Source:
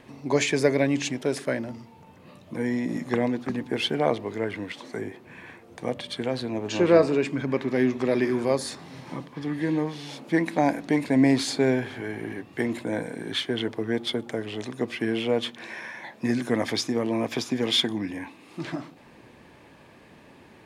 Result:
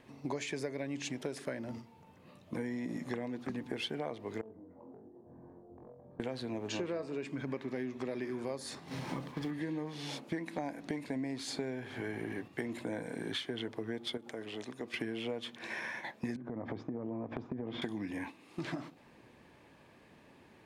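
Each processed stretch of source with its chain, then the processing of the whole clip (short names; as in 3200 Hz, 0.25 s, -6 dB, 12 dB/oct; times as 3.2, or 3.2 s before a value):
4.41–6.2 inverse Chebyshev low-pass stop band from 2800 Hz, stop band 60 dB + compressor 10:1, threshold -43 dBFS + flutter echo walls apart 3.9 m, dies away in 0.4 s
8.87–9.51 G.711 law mismatch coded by mu + doubler 37 ms -12.5 dB
14.17–14.94 bell 66 Hz -13.5 dB 1.5 oct + compressor 2.5:1, threshold -38 dBFS
16.36–17.82 Chebyshev low-pass 950 Hz + low shelf 270 Hz +8.5 dB + compressor 10:1, threshold -30 dBFS
whole clip: gate -40 dBFS, range -7 dB; compressor 10:1, threshold -33 dBFS; gain -1.5 dB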